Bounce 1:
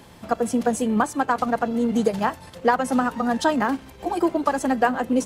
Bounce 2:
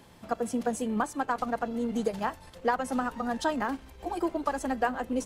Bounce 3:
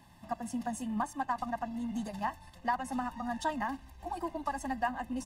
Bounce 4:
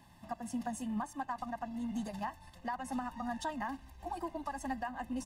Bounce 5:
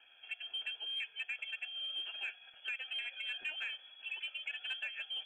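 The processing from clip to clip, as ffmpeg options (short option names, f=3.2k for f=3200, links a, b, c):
-af "asubboost=boost=7:cutoff=52,volume=-7.5dB"
-af "aecho=1:1:1.1:0.97,volume=-7.5dB"
-af "alimiter=level_in=2dB:limit=-24dB:level=0:latency=1:release=209,volume=-2dB,volume=-1.5dB"
-filter_complex "[0:a]lowpass=f=2.9k:t=q:w=0.5098,lowpass=f=2.9k:t=q:w=0.6013,lowpass=f=2.9k:t=q:w=0.9,lowpass=f=2.9k:t=q:w=2.563,afreqshift=-3400,asplit=2[a][b];[b]highpass=f=720:p=1,volume=8dB,asoftclip=type=tanh:threshold=-23dB[c];[a][c]amix=inputs=2:normalize=0,lowpass=f=1.7k:p=1,volume=-6dB,volume=-1dB"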